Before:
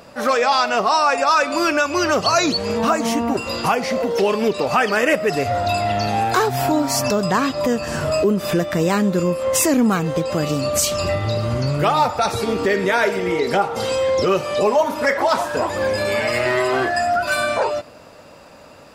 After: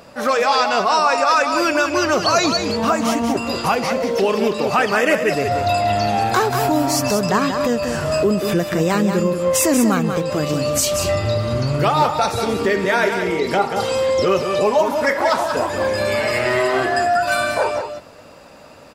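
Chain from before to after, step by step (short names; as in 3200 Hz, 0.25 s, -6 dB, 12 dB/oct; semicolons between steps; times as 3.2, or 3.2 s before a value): echo 0.186 s -7 dB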